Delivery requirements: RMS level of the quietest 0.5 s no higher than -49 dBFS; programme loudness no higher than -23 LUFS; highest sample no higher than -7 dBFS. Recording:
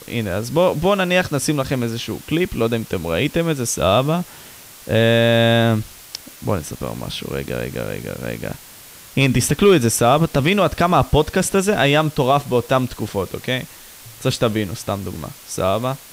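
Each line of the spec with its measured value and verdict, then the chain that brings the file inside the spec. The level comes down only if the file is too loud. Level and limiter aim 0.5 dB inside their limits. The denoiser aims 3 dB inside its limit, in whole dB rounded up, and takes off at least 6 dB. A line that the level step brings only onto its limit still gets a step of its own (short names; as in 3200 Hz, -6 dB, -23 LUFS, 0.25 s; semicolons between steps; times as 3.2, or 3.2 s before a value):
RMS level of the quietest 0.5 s -41 dBFS: fail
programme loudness -19.0 LUFS: fail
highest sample -4.0 dBFS: fail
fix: denoiser 7 dB, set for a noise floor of -41 dBFS; gain -4.5 dB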